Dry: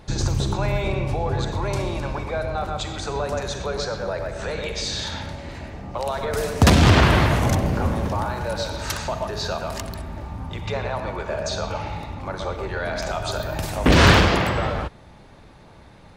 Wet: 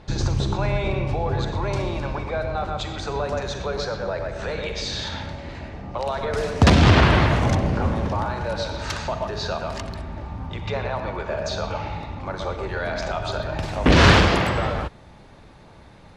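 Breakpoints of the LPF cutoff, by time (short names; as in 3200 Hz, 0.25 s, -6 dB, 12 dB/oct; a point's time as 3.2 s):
12.09 s 5400 Hz
12.79 s 9200 Hz
13.12 s 4400 Hz
13.69 s 4400 Hz
14.38 s 11000 Hz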